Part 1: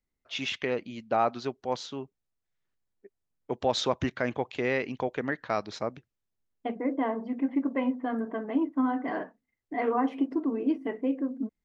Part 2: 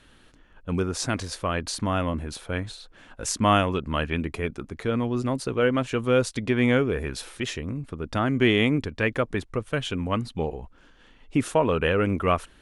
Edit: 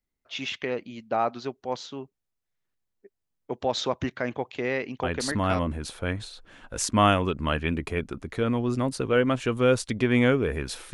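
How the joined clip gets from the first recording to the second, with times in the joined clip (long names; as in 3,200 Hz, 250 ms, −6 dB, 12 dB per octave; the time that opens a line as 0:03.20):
part 1
0:05.31: continue with part 2 from 0:01.78, crossfade 0.56 s logarithmic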